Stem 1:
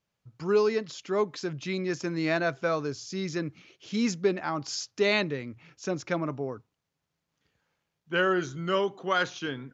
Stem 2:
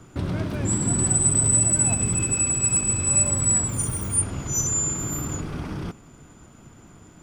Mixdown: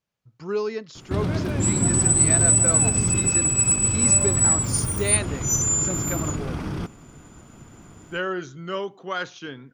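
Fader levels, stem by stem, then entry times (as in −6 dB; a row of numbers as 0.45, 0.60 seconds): −2.5, +2.0 decibels; 0.00, 0.95 seconds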